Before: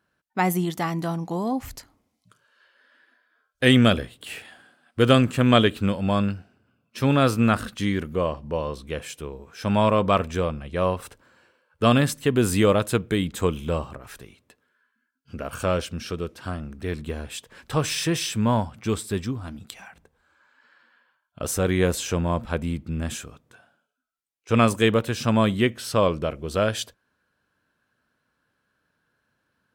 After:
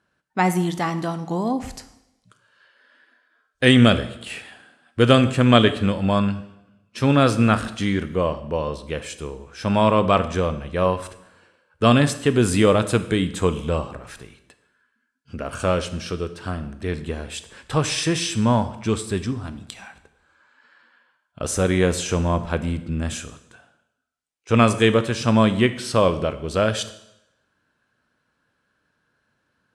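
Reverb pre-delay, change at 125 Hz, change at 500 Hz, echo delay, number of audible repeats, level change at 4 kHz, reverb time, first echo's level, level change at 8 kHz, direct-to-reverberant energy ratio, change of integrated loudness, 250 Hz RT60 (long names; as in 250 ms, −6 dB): 18 ms, +3.0 dB, +2.5 dB, no echo audible, no echo audible, +3.0 dB, 0.85 s, no echo audible, +2.0 dB, 11.0 dB, +2.5 dB, 0.85 s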